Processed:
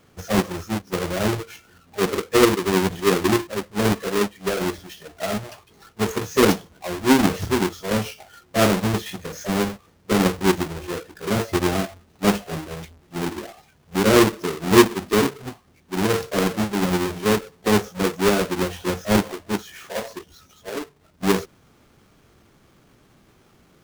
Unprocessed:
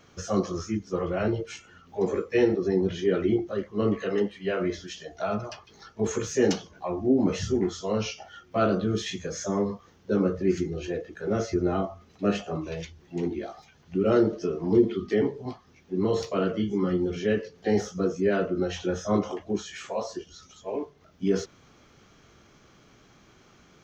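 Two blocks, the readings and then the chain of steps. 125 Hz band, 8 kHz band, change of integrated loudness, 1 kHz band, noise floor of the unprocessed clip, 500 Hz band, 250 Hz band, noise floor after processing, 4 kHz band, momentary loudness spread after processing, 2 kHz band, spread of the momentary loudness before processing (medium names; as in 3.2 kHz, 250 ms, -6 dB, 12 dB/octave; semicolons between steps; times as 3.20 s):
+5.5 dB, no reading, +5.5 dB, +9.5 dB, -57 dBFS, +3.5 dB, +5.0 dB, -57 dBFS, +11.5 dB, 15 LU, +11.0 dB, 13 LU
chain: square wave that keeps the level; upward expansion 1.5:1, over -30 dBFS; trim +5 dB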